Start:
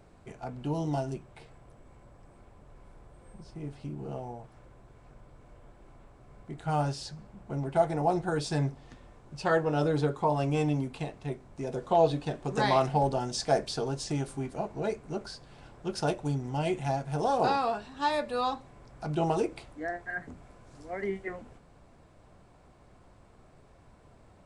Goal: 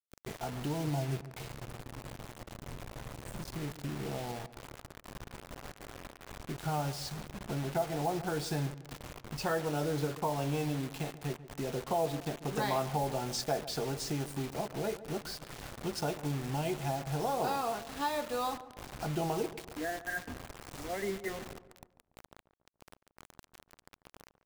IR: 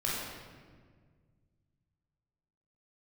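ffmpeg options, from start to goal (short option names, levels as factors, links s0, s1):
-filter_complex "[0:a]asettb=1/sr,asplit=3[s0][s1][s2];[s0]atrim=end=0.874[s3];[s1]atrim=start=0.87:end=3.43,asetpts=PTS-STARTPTS,afade=t=in:d=0.004:c=qsin,afade=t=out:st=2.556:d=0.004:c=qsin,equalizer=f=125:t=o:w=0.33:g=10,equalizer=f=1250:t=o:w=0.33:g=-8,equalizer=f=6300:t=o:w=0.33:g=-10[s4];[s2]atrim=start=3.426[s5];[s3][s4]acrossfade=d=0.004:c1=hsin:c2=qsin[s6];[s6][s5]acrossfade=d=0.004:c1=qsin:c2=hsin,acompressor=threshold=0.00631:ratio=2,acrusher=bits=7:mix=0:aa=0.000001,asplit=2[s7][s8];[s8]adelay=143,lowpass=f=1600:p=1,volume=0.188,asplit=2[s9][s10];[s10]adelay=143,lowpass=f=1600:p=1,volume=0.48,asplit=2[s11][s12];[s12]adelay=143,lowpass=f=1600:p=1,volume=0.48,asplit=2[s13][s14];[s14]adelay=143,lowpass=f=1600:p=1,volume=0.48[s15];[s7][s9][s11][s13][s15]amix=inputs=5:normalize=0,volume=1.78"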